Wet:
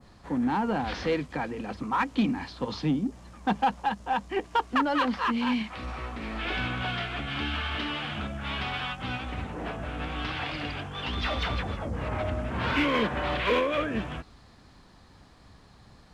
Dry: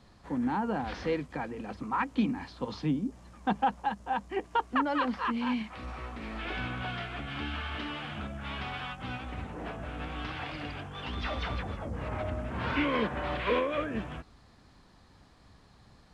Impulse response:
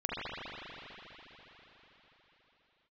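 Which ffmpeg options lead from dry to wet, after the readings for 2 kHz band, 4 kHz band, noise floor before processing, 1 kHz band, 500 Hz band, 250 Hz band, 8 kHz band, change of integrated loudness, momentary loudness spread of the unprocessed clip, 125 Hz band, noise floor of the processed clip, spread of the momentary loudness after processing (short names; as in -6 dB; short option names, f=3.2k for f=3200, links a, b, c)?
+5.0 dB, +7.0 dB, -59 dBFS, +3.5 dB, +3.5 dB, +3.5 dB, n/a, +4.0 dB, 10 LU, +3.5 dB, -55 dBFS, 9 LU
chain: -filter_complex "[0:a]adynamicequalizer=threshold=0.00447:dfrequency=3800:dqfactor=0.83:tfrequency=3800:tqfactor=0.83:attack=5:release=100:ratio=0.375:range=2:mode=boostabove:tftype=bell,asplit=2[a][b];[b]asoftclip=type=hard:threshold=-28dB,volume=-4.5dB[c];[a][c]amix=inputs=2:normalize=0"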